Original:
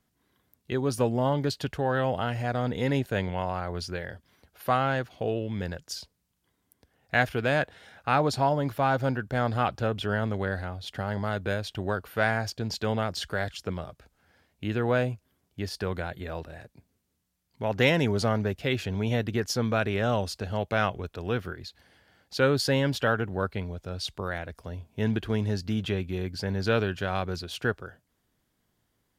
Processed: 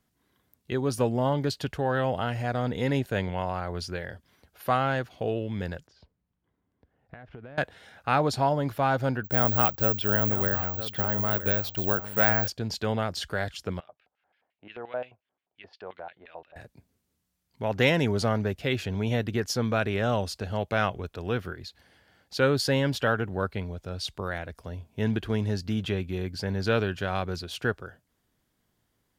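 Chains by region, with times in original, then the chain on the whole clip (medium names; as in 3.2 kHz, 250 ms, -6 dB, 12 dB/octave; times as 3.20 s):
5.87–7.58 s: compression 10:1, threshold -38 dBFS + tape spacing loss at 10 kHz 40 dB
9.24–12.48 s: delay 956 ms -12 dB + careless resampling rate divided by 2×, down none, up zero stuff
13.80–16.56 s: LFO band-pass square 5.7 Hz 750–2700 Hz + distance through air 160 m
whole clip: none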